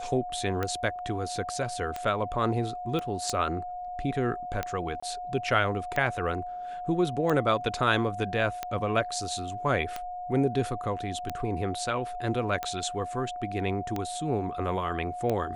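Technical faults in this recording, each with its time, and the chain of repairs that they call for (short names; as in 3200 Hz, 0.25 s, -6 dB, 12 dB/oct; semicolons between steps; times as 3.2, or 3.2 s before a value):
tick 45 rpm -16 dBFS
tone 720 Hz -34 dBFS
2.99 pop -20 dBFS
5–5.03 gap 25 ms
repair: de-click; notch 720 Hz, Q 30; interpolate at 5, 25 ms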